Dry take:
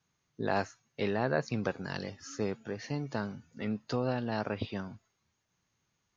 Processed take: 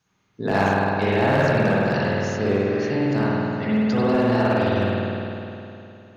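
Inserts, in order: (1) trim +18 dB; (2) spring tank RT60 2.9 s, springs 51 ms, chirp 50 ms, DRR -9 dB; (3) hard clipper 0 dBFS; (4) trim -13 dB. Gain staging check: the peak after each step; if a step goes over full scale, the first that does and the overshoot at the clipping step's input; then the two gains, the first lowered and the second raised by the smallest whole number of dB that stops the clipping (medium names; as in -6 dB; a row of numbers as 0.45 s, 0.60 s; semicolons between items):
+3.0 dBFS, +8.0 dBFS, 0.0 dBFS, -13.0 dBFS; step 1, 8.0 dB; step 1 +10 dB, step 4 -5 dB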